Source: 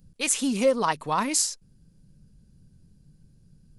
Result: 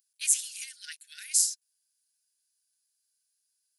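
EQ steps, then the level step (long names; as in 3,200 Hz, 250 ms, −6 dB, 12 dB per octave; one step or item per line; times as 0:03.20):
linear-phase brick-wall high-pass 1,400 Hz
first difference
0.0 dB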